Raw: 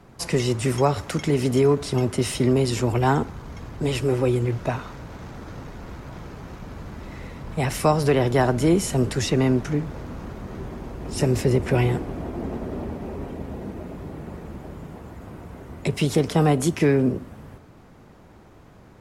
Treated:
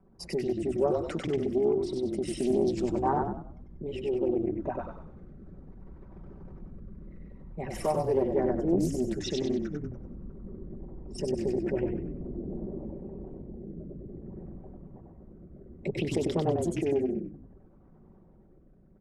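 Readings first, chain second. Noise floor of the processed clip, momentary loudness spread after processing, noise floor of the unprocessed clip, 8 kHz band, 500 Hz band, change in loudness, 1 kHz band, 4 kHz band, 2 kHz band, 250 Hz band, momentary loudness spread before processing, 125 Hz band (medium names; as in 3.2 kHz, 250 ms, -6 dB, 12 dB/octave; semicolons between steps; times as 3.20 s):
-57 dBFS, 21 LU, -49 dBFS, -14.0 dB, -5.5 dB, -7.5 dB, -8.0 dB, -11.5 dB, -15.0 dB, -7.0 dB, 19 LU, -14.0 dB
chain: resonances exaggerated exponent 2; peaking EQ 130 Hz -11 dB 0.44 oct; comb 5.2 ms, depth 49%; rotary cabinet horn 0.6 Hz; on a send: frequency-shifting echo 96 ms, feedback 38%, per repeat -34 Hz, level -3 dB; on the sum: loudspeaker Doppler distortion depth 0.28 ms; trim -7.5 dB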